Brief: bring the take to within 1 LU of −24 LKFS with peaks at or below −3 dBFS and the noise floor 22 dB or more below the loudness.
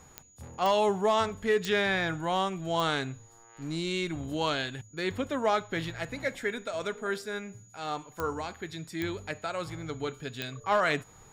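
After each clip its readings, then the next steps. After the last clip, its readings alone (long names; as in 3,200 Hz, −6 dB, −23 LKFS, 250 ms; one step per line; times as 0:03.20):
number of clicks 7; interfering tone 6,800 Hz; level of the tone −57 dBFS; integrated loudness −31.0 LKFS; sample peak −16.5 dBFS; target loudness −24.0 LKFS
→ click removal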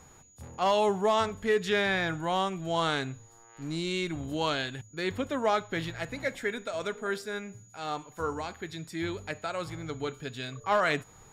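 number of clicks 0; interfering tone 6,800 Hz; level of the tone −57 dBFS
→ notch filter 6,800 Hz, Q 30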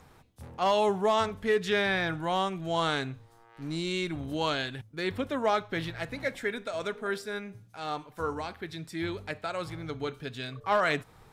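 interfering tone none found; integrated loudness −31.0 LKFS; sample peak −16.5 dBFS; target loudness −24.0 LKFS
→ level +7 dB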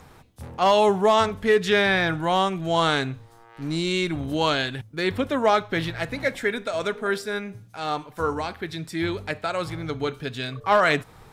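integrated loudness −24.0 LKFS; sample peak −9.5 dBFS; background noise floor −51 dBFS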